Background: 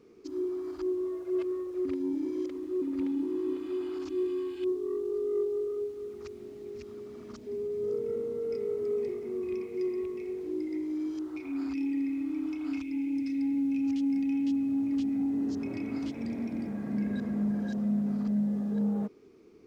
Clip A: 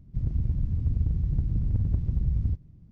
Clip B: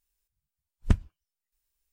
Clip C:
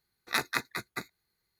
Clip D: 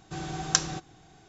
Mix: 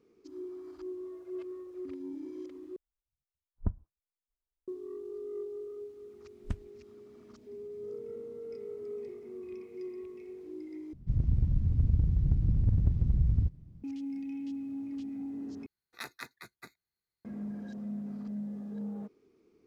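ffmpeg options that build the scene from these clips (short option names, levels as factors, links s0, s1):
-filter_complex "[2:a]asplit=2[s0][s1];[0:a]volume=0.335[s2];[s0]lowpass=f=1100:w=0.5412,lowpass=f=1100:w=1.3066[s3];[s2]asplit=4[s4][s5][s6][s7];[s4]atrim=end=2.764[s8];[s3]atrim=end=1.92,asetpts=PTS-STARTPTS,volume=0.355[s9];[s5]atrim=start=4.676:end=10.934[s10];[1:a]atrim=end=2.91,asetpts=PTS-STARTPTS,volume=0.944[s11];[s6]atrim=start=13.836:end=15.664[s12];[3:a]atrim=end=1.59,asetpts=PTS-STARTPTS,volume=0.211[s13];[s7]atrim=start=17.246[s14];[s1]atrim=end=1.92,asetpts=PTS-STARTPTS,volume=0.224,afade=t=in:d=0.004:c=hsin,afade=t=out:st=1.916:d=0.004:c=hsin,adelay=5600[s15];[s8][s9]acrossfade=d=0.004:c1=hsin:c2=hsin[s16];[s16][s10]acrossfade=d=0.004:c1=hsin:c2=hsin[s17];[s17][s11]acrossfade=d=0.004:c1=hsin:c2=hsin[s18];[s18][s12]acrossfade=d=0.004:c1=hsin:c2=hsin[s19];[s19][s13]acrossfade=d=0.004:c1=hsin:c2=hsin[s20];[s20][s14]acrossfade=d=0.004:c1=hsin:c2=hsin[s21];[s21][s15]amix=inputs=2:normalize=0"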